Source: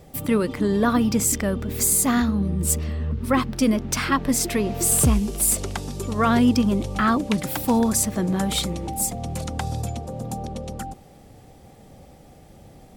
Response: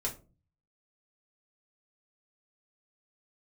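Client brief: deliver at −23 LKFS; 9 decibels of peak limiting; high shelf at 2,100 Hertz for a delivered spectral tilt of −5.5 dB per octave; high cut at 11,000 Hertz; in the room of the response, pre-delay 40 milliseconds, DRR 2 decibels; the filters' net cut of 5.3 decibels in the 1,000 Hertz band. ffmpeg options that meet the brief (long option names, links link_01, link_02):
-filter_complex "[0:a]lowpass=11000,equalizer=frequency=1000:width_type=o:gain=-6,highshelf=frequency=2100:gain=-4.5,alimiter=limit=-17.5dB:level=0:latency=1,asplit=2[link_01][link_02];[1:a]atrim=start_sample=2205,adelay=40[link_03];[link_02][link_03]afir=irnorm=-1:irlink=0,volume=-5dB[link_04];[link_01][link_04]amix=inputs=2:normalize=0,volume=1dB"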